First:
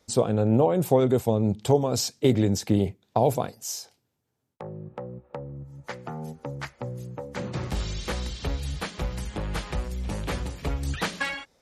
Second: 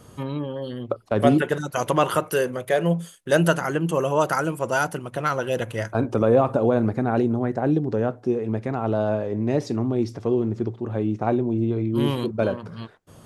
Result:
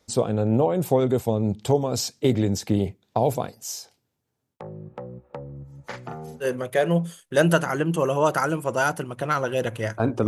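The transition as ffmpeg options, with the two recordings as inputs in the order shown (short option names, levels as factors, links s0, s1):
-filter_complex "[0:a]asplit=3[s0][s1][s2];[s0]afade=t=out:st=5.9:d=0.02[s3];[s1]asplit=2[s4][s5];[s5]adelay=41,volume=0.631[s6];[s4][s6]amix=inputs=2:normalize=0,afade=t=in:st=5.9:d=0.02,afade=t=out:st=6.48:d=0.02[s7];[s2]afade=t=in:st=6.48:d=0.02[s8];[s3][s7][s8]amix=inputs=3:normalize=0,apad=whole_dur=10.27,atrim=end=10.27,atrim=end=6.48,asetpts=PTS-STARTPTS[s9];[1:a]atrim=start=2.35:end=6.22,asetpts=PTS-STARTPTS[s10];[s9][s10]acrossfade=d=0.08:c1=tri:c2=tri"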